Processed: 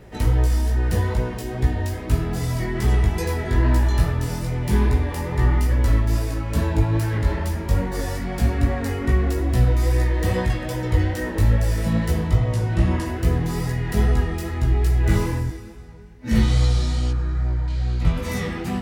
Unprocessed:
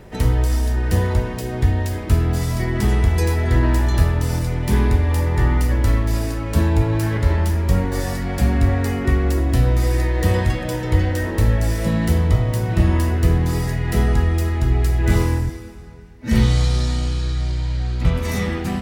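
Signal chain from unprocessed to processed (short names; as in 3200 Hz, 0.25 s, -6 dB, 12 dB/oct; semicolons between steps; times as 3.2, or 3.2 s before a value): 12.36–13.06 LPF 10000 Hz 12 dB/oct; 17.11–17.68 resonant high shelf 2300 Hz -12.5 dB, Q 1.5; chorus 2.4 Hz, delay 16 ms, depth 3.4 ms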